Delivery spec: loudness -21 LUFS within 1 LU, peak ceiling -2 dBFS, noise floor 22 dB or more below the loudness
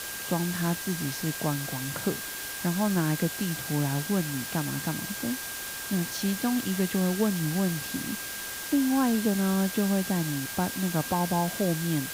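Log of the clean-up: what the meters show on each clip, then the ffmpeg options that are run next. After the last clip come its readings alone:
steady tone 1.6 kHz; tone level -41 dBFS; noise floor -37 dBFS; noise floor target -50 dBFS; loudness -28.0 LUFS; peak level -14.5 dBFS; loudness target -21.0 LUFS
-> -af "bandreject=f=1600:w=30"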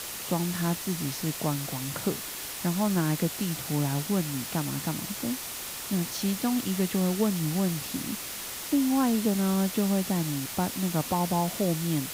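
steady tone not found; noise floor -37 dBFS; noise floor target -51 dBFS
-> -af "afftdn=nr=14:nf=-37"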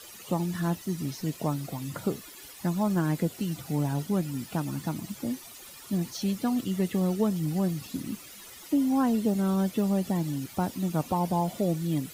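noise floor -47 dBFS; noise floor target -52 dBFS
-> -af "afftdn=nr=6:nf=-47"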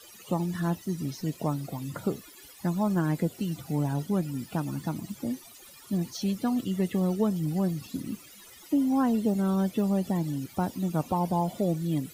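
noise floor -51 dBFS; noise floor target -52 dBFS
-> -af "afftdn=nr=6:nf=-51"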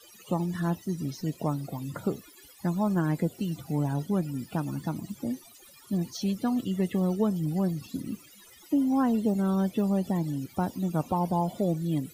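noise floor -54 dBFS; loudness -29.5 LUFS; peak level -15.5 dBFS; loudness target -21.0 LUFS
-> -af "volume=2.66"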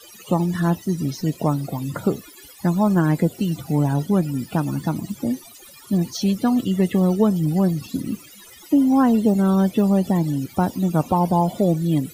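loudness -21.0 LUFS; peak level -7.0 dBFS; noise floor -45 dBFS

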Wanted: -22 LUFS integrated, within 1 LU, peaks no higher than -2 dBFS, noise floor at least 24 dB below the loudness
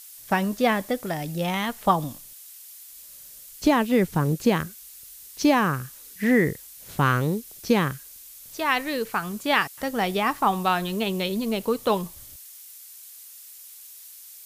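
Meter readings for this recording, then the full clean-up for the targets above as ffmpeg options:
noise floor -45 dBFS; noise floor target -49 dBFS; loudness -24.5 LUFS; peak level -6.5 dBFS; loudness target -22.0 LUFS
-> -af "afftdn=nr=6:nf=-45"
-af "volume=1.33"

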